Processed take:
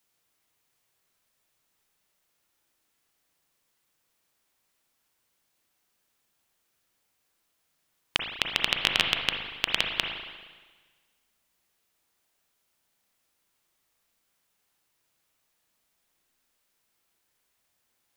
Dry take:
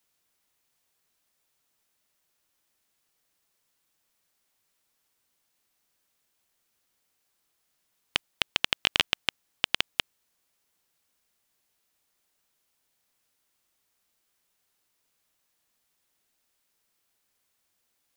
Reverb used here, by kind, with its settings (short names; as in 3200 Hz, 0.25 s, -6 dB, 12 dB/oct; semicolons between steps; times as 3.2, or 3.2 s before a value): spring tank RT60 1.4 s, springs 33/39/58 ms, chirp 55 ms, DRR 2 dB